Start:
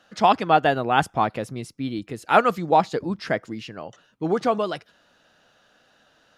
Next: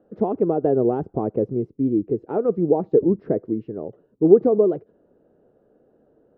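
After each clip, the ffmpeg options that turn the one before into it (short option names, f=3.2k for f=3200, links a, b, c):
-af "alimiter=limit=-13.5dB:level=0:latency=1:release=127,lowpass=f=410:t=q:w=3.7,volume=3dB"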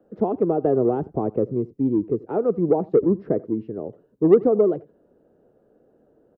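-filter_complex "[0:a]acrossover=split=280|410[a][b][c];[b]asoftclip=type=tanh:threshold=-20.5dB[d];[a][d][c]amix=inputs=3:normalize=0,aecho=1:1:86:0.075"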